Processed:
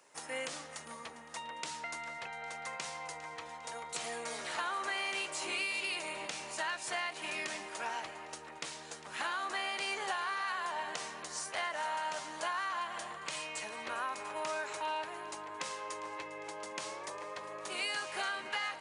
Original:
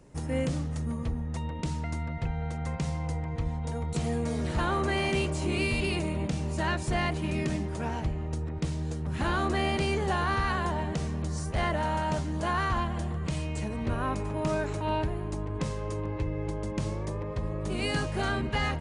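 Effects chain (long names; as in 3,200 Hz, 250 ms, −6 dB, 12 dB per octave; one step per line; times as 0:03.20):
high-pass filter 970 Hz 12 dB per octave
downward compressor, threshold −36 dBFS, peak gain reduction 8.5 dB
echo with a time of its own for lows and highs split 2,100 Hz, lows 296 ms, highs 403 ms, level −16 dB
level +3 dB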